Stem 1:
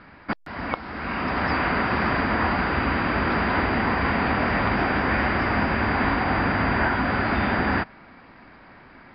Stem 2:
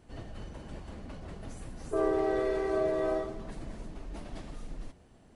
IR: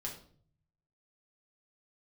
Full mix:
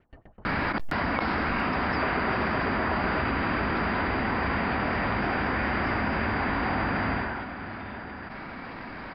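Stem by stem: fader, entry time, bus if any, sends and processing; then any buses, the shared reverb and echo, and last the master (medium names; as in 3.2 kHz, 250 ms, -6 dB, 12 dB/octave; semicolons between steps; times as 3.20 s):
7.13 s -7 dB -> 7.55 s -19 dB, 0.45 s, no send, echo send -14 dB, level flattener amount 100%
-1.0 dB, 0.00 s, no send, echo send -10.5 dB, LFO low-pass sine 9.3 Hz 830–2500 Hz; sawtooth tremolo in dB decaying 7.9 Hz, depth 29 dB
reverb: none
echo: delay 686 ms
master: none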